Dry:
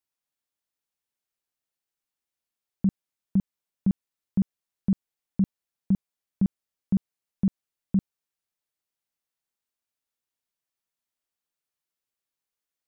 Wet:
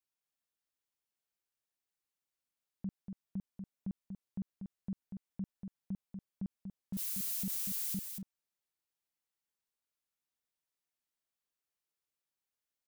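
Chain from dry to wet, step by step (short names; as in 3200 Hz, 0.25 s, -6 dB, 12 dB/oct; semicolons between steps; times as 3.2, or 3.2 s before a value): 6.93–7.98 switching spikes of -23.5 dBFS; limiter -28 dBFS, peak gain reduction 12 dB; on a send: echo 0.239 s -6 dB; on the sum: gain -5 dB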